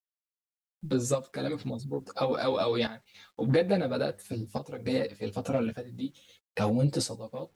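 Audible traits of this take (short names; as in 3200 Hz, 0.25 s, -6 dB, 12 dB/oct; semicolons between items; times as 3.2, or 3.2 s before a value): random-step tremolo, depth 75%; a quantiser's noise floor 12-bit, dither none; a shimmering, thickened sound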